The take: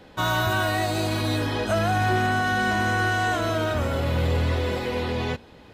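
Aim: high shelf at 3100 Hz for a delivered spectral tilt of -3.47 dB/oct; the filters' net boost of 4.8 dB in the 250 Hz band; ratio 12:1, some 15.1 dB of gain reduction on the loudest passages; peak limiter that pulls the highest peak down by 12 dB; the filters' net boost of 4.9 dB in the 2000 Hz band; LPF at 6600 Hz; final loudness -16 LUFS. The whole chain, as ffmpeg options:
-af "lowpass=6.6k,equalizer=f=250:t=o:g=6,equalizer=f=2k:t=o:g=4.5,highshelf=f=3.1k:g=8.5,acompressor=threshold=-32dB:ratio=12,volume=24.5dB,alimiter=limit=-8.5dB:level=0:latency=1"

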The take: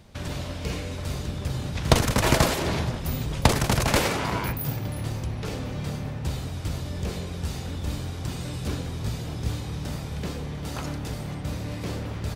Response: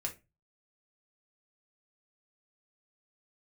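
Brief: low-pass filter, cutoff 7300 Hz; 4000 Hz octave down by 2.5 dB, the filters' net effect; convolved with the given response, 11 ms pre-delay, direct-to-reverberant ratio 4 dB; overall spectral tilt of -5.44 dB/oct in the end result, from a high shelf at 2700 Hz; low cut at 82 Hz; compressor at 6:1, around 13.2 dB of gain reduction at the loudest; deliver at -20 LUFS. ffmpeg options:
-filter_complex "[0:a]highpass=82,lowpass=7.3k,highshelf=f=2.7k:g=7,equalizer=f=4k:t=o:g=-9,acompressor=threshold=-29dB:ratio=6,asplit=2[a][b];[1:a]atrim=start_sample=2205,adelay=11[c];[b][c]afir=irnorm=-1:irlink=0,volume=-4.5dB[d];[a][d]amix=inputs=2:normalize=0,volume=12.5dB"

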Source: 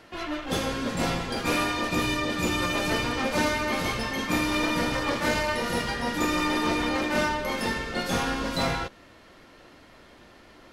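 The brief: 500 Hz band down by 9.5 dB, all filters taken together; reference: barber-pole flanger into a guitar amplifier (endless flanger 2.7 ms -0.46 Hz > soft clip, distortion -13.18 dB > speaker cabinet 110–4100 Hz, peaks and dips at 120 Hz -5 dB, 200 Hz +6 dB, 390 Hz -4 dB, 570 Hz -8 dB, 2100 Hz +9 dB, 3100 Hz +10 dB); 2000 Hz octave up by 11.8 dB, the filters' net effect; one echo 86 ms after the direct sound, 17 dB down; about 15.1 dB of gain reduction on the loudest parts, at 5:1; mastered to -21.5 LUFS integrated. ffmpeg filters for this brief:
-filter_complex "[0:a]equalizer=f=500:t=o:g=-6.5,equalizer=f=2k:t=o:g=7.5,acompressor=threshold=-38dB:ratio=5,aecho=1:1:86:0.141,asplit=2[a][b];[b]adelay=2.7,afreqshift=-0.46[c];[a][c]amix=inputs=2:normalize=1,asoftclip=threshold=-39.5dB,highpass=110,equalizer=f=120:t=q:w=4:g=-5,equalizer=f=200:t=q:w=4:g=6,equalizer=f=390:t=q:w=4:g=-4,equalizer=f=570:t=q:w=4:g=-8,equalizer=f=2.1k:t=q:w=4:g=9,equalizer=f=3.1k:t=q:w=4:g=10,lowpass=f=4.1k:w=0.5412,lowpass=f=4.1k:w=1.3066,volume=18dB"

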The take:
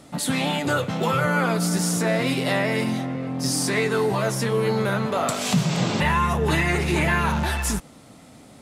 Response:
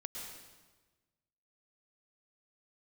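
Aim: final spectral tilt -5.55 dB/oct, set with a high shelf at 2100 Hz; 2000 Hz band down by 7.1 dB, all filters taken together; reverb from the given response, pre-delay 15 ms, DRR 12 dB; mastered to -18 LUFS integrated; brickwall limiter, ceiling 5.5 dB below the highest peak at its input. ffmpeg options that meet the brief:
-filter_complex "[0:a]equalizer=f=2k:t=o:g=-6.5,highshelf=f=2.1k:g=-5,alimiter=limit=-16.5dB:level=0:latency=1,asplit=2[a][b];[1:a]atrim=start_sample=2205,adelay=15[c];[b][c]afir=irnorm=-1:irlink=0,volume=-10.5dB[d];[a][d]amix=inputs=2:normalize=0,volume=8dB"

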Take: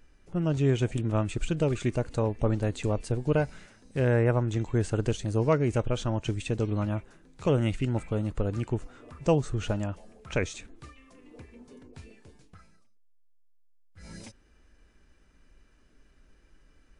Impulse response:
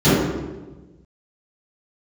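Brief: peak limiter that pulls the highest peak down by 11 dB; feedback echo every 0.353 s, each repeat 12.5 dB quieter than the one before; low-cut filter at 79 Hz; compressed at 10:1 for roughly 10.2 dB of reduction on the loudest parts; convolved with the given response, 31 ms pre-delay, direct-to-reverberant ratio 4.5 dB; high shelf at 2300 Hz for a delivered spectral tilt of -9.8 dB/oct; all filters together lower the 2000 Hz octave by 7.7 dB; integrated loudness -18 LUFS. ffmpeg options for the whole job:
-filter_complex "[0:a]highpass=79,equalizer=f=2k:t=o:g=-6.5,highshelf=f=2.3k:g=-8,acompressor=threshold=-30dB:ratio=10,alimiter=level_in=7.5dB:limit=-24dB:level=0:latency=1,volume=-7.5dB,aecho=1:1:353|706|1059:0.237|0.0569|0.0137,asplit=2[a][b];[1:a]atrim=start_sample=2205,adelay=31[c];[b][c]afir=irnorm=-1:irlink=0,volume=-31dB[d];[a][d]amix=inputs=2:normalize=0,volume=17.5dB"

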